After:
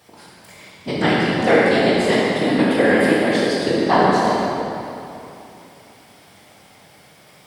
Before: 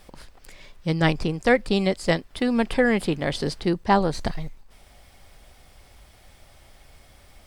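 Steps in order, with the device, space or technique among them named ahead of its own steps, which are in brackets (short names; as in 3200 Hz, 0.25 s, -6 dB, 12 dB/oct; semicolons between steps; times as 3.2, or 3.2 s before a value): whispering ghost (whisperiser; HPF 210 Hz 12 dB/oct; reverb RT60 2.9 s, pre-delay 15 ms, DRR -6.5 dB)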